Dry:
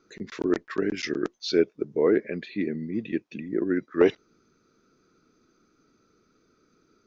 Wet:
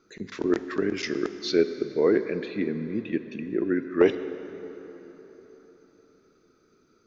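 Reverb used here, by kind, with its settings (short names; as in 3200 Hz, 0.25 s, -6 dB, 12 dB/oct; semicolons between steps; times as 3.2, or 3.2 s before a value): plate-style reverb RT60 4.1 s, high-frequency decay 0.65×, DRR 10 dB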